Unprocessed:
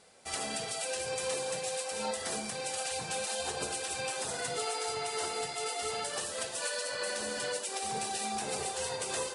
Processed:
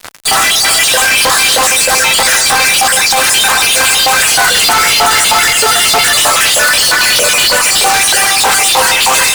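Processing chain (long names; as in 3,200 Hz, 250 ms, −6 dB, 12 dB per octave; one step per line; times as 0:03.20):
time-frequency cells dropped at random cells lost 36%
high-pass filter 300 Hz 12 dB per octave
tilt shelving filter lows +4.5 dB, about 1,200 Hz
auto-filter high-pass saw up 3.2 Hz 860–3,600 Hz
fuzz pedal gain 58 dB, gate −58 dBFS
on a send: delay that swaps between a low-pass and a high-pass 321 ms, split 2,200 Hz, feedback 57%, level −7.5 dB
on the sum: level +5 dB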